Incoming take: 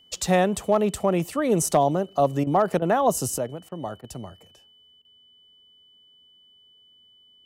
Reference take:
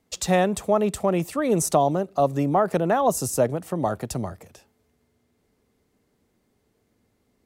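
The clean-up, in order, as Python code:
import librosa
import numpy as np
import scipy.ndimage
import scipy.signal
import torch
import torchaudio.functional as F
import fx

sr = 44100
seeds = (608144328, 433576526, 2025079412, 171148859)

y = fx.fix_declip(x, sr, threshold_db=-10.0)
y = fx.notch(y, sr, hz=3000.0, q=30.0)
y = fx.fix_interpolate(y, sr, at_s=(2.44, 2.79, 3.69, 4.01, 5.02), length_ms=27.0)
y = fx.gain(y, sr, db=fx.steps((0.0, 0.0), (3.38, 8.0)))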